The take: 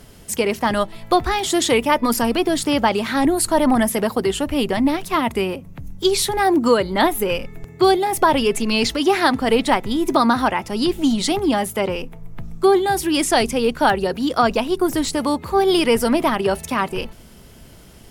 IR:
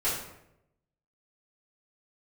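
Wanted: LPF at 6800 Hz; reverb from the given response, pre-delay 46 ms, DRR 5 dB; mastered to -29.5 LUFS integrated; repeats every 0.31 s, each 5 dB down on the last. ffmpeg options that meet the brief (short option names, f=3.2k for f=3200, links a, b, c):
-filter_complex "[0:a]lowpass=6.8k,aecho=1:1:310|620|930|1240|1550|1860|2170:0.562|0.315|0.176|0.0988|0.0553|0.031|0.0173,asplit=2[a][b];[1:a]atrim=start_sample=2205,adelay=46[c];[b][c]afir=irnorm=-1:irlink=0,volume=-14.5dB[d];[a][d]amix=inputs=2:normalize=0,volume=-13dB"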